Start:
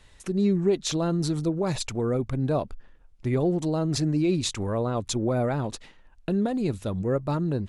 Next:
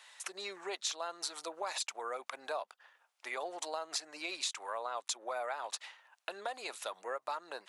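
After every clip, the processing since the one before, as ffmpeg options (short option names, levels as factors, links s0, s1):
-af "highpass=f=750:w=0.5412,highpass=f=750:w=1.3066,acompressor=threshold=0.0112:ratio=4,volume=1.5"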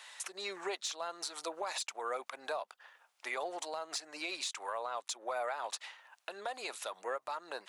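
-af "asoftclip=type=tanh:threshold=0.0708,alimiter=level_in=2.66:limit=0.0631:level=0:latency=1:release=373,volume=0.376,volume=1.78"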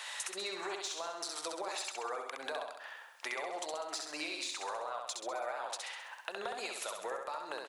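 -af "acompressor=threshold=0.00447:ratio=6,aecho=1:1:66|132|198|264|330|396|462:0.631|0.341|0.184|0.0994|0.0537|0.029|0.0156,volume=2.66"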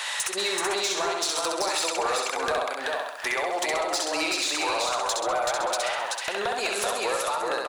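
-af "aecho=1:1:381:0.708,aeval=exprs='0.106*sin(PI/2*2.82*val(0)/0.106)':c=same"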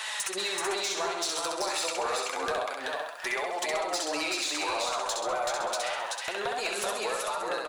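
-af "flanger=delay=4.6:depth=9.2:regen=48:speed=0.28:shape=sinusoidal"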